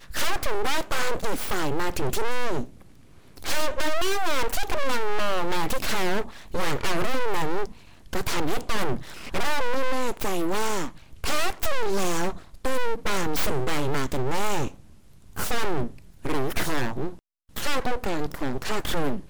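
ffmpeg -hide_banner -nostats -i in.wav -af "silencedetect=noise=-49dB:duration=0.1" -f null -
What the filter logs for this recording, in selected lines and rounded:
silence_start: 17.19
silence_end: 17.49 | silence_duration: 0.30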